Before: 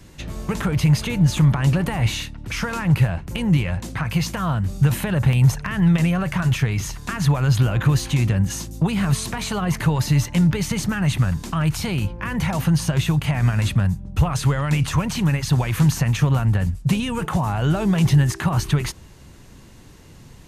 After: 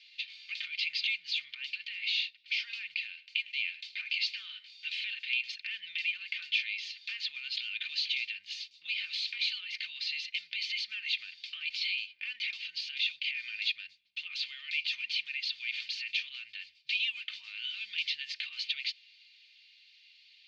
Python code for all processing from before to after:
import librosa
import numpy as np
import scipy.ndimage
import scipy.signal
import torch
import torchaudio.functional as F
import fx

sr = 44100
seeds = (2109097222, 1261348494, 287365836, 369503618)

y = fx.chain(x, sr, fx.brickwall_bandpass(low_hz=600.0, high_hz=9500.0),
    fx.echo_single(ms=105, db=-19.0), at=(3.1, 5.49))
y = scipy.signal.sosfilt(scipy.signal.ellip(3, 1.0, 60, [2300.0, 4600.0], 'bandpass', fs=sr, output='sos'), y)
y = y + 0.55 * np.pad(y, (int(3.3 * sr / 1000.0), 0))[:len(y)]
y = fx.rider(y, sr, range_db=4, speed_s=2.0)